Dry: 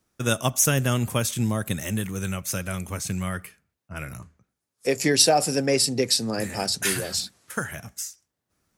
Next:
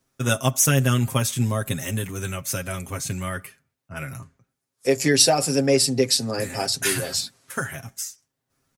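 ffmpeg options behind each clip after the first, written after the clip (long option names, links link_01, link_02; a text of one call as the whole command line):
ffmpeg -i in.wav -af "aecho=1:1:7.5:0.65" out.wav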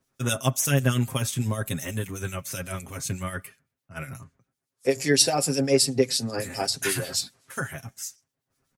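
ffmpeg -i in.wav -filter_complex "[0:a]acrossover=split=2500[link_01][link_02];[link_01]aeval=exprs='val(0)*(1-0.7/2+0.7/2*cos(2*PI*8*n/s))':channel_layout=same[link_03];[link_02]aeval=exprs='val(0)*(1-0.7/2-0.7/2*cos(2*PI*8*n/s))':channel_layout=same[link_04];[link_03][link_04]amix=inputs=2:normalize=0" out.wav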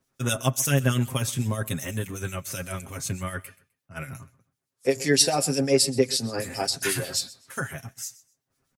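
ffmpeg -i in.wav -af "aecho=1:1:128|256:0.1|0.023" out.wav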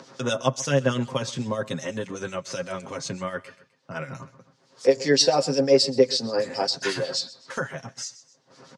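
ffmpeg -i in.wav -af "highpass=frequency=140:width=0.5412,highpass=frequency=140:width=1.3066,equalizer=frequency=520:width_type=q:width=4:gain=9,equalizer=frequency=970:width_type=q:width=4:gain=6,equalizer=frequency=2400:width_type=q:width=4:gain=-4,equalizer=frequency=4600:width_type=q:width=4:gain=4,lowpass=frequency=6100:width=0.5412,lowpass=frequency=6100:width=1.3066,acompressor=mode=upward:threshold=-27dB:ratio=2.5" out.wav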